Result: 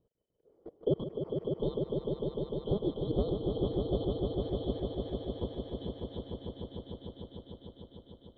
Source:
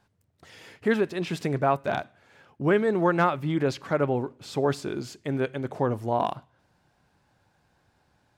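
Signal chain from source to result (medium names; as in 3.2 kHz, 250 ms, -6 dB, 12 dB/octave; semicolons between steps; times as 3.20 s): four frequency bands reordered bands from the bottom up 2413; level held to a coarse grid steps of 24 dB; resonant low-pass 480 Hz, resonance Q 4.9; echo with a slow build-up 150 ms, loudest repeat 5, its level -5 dB; trim +3 dB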